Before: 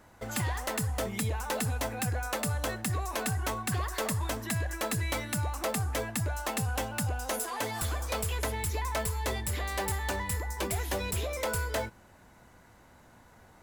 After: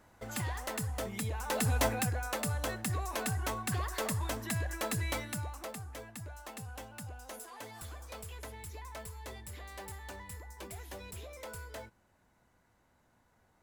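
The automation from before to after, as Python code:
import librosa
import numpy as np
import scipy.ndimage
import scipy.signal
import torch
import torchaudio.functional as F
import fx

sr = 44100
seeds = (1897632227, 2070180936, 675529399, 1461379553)

y = fx.gain(x, sr, db=fx.line((1.32, -5.0), (1.87, 4.5), (2.12, -3.0), (5.13, -3.0), (5.84, -13.5)))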